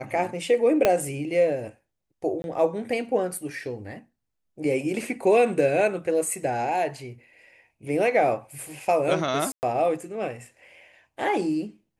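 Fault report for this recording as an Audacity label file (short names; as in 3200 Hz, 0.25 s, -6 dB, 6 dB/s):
0.850000	0.850000	pop -6 dBFS
2.420000	2.440000	gap 21 ms
9.520000	9.630000	gap 0.109 s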